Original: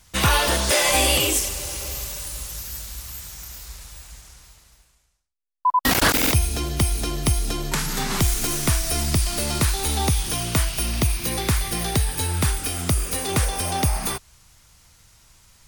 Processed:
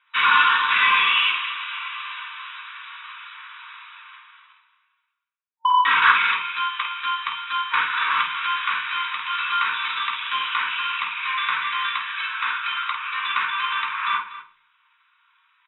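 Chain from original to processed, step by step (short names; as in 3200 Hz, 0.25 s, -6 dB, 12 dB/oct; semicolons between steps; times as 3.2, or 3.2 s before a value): sample leveller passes 2; FFT band-pass 910–3900 Hz; bell 1900 Hz -7.5 dB 0.31 oct; in parallel at -7.5 dB: overloaded stage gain 24 dB; on the sum: air absorption 370 m; tapped delay 50/242 ms -7.5/-15 dB; reverb RT60 0.45 s, pre-delay 3 ms, DRR -1 dB; gain -1.5 dB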